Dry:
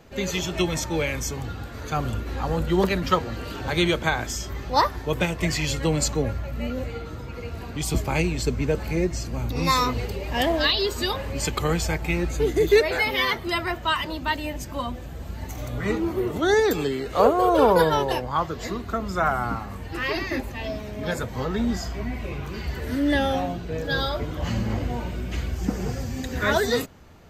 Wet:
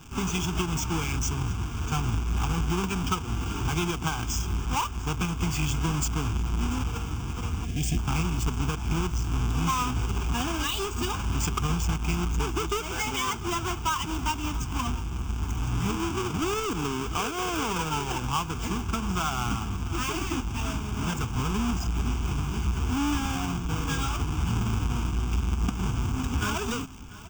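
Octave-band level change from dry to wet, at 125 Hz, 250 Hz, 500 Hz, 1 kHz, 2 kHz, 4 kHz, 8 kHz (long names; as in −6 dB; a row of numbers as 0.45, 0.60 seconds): +1.0, −3.0, −13.0, −4.5, −7.0, −4.5, +0.5 decibels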